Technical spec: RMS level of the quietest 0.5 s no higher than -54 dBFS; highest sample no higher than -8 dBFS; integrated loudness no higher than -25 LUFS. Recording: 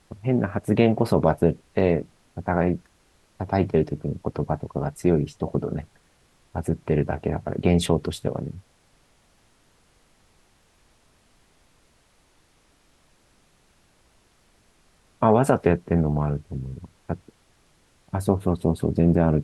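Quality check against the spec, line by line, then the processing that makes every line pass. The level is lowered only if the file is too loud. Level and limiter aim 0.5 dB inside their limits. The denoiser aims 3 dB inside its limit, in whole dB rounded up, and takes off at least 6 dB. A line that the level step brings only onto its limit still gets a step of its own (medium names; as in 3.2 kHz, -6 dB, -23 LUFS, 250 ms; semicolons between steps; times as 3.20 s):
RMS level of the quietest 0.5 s -61 dBFS: pass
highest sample -4.0 dBFS: fail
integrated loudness -24.0 LUFS: fail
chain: trim -1.5 dB; peak limiter -8.5 dBFS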